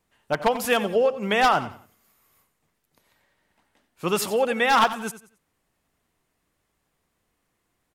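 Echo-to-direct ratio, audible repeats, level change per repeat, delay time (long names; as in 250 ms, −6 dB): −13.5 dB, 3, −10.5 dB, 90 ms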